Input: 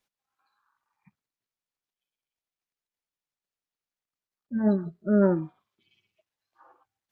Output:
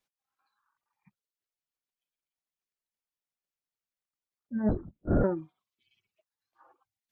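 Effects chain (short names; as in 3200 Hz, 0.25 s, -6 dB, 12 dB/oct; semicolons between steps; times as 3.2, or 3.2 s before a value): reverb removal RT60 0.57 s; 4.69–5.24 LPC vocoder at 8 kHz whisper; gain -3.5 dB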